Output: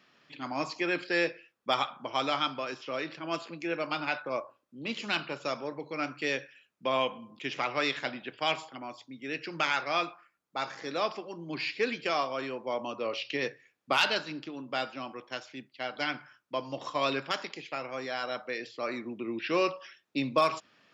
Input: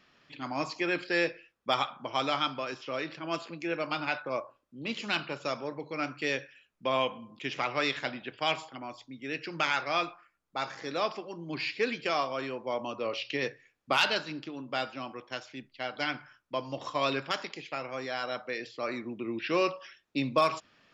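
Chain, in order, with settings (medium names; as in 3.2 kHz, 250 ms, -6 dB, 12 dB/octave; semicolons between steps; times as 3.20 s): high-pass 130 Hz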